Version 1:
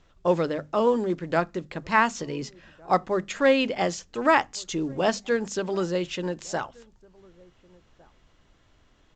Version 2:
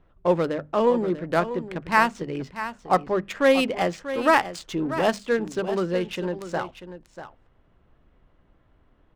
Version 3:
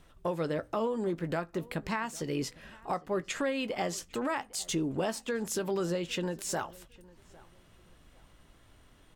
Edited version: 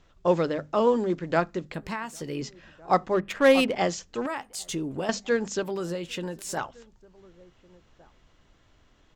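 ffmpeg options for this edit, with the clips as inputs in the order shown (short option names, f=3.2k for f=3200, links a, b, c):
-filter_complex "[2:a]asplit=3[a][b][c];[0:a]asplit=5[d][e][f][g][h];[d]atrim=end=1.742[i];[a]atrim=start=1.738:end=2.412[j];[e]atrim=start=2.408:end=3.142[k];[1:a]atrim=start=3.138:end=3.752[l];[f]atrim=start=3.748:end=4.262[m];[b]atrim=start=4.258:end=5.092[n];[g]atrim=start=5.088:end=5.632[o];[c]atrim=start=5.628:end=6.572[p];[h]atrim=start=6.568[q];[i][j]acrossfade=d=0.004:c1=hsin:c2=hsin[r];[r][k]acrossfade=d=0.004:c1=hsin:c2=hsin[s];[s][l]acrossfade=d=0.004:c1=hsin:c2=hsin[t];[t][m]acrossfade=d=0.004:c1=hsin:c2=hsin[u];[u][n]acrossfade=d=0.004:c1=hsin:c2=hsin[v];[v][o]acrossfade=d=0.004:c1=hsin:c2=hsin[w];[w][p]acrossfade=d=0.004:c1=hsin:c2=hsin[x];[x][q]acrossfade=d=0.004:c1=hsin:c2=hsin"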